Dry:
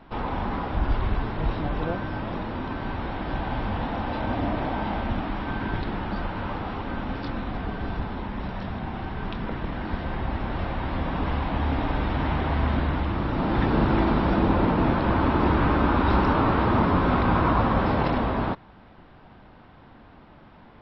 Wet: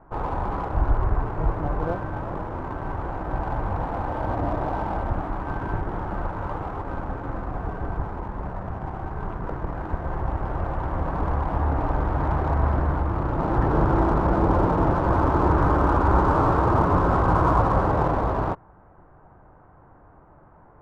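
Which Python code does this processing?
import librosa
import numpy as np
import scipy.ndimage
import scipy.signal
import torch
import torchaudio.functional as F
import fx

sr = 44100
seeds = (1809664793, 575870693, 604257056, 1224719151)

p1 = scipy.signal.sosfilt(scipy.signal.butter(4, 1400.0, 'lowpass', fs=sr, output='sos'), x)
p2 = fx.peak_eq(p1, sr, hz=230.0, db=-12.0, octaves=0.46)
p3 = np.sign(p2) * np.maximum(np.abs(p2) - 10.0 ** (-34.5 / 20.0), 0.0)
y = p2 + (p3 * librosa.db_to_amplitude(-5.0))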